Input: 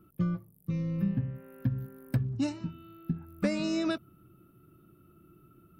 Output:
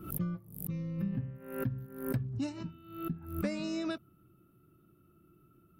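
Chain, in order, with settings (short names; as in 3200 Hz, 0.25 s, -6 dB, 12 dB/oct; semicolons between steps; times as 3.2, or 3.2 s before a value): backwards sustainer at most 88 dB/s; gain -5.5 dB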